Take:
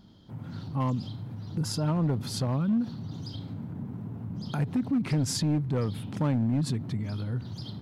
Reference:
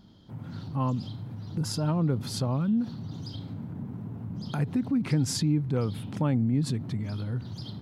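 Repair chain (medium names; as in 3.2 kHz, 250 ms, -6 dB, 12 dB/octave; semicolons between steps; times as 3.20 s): clip repair -21 dBFS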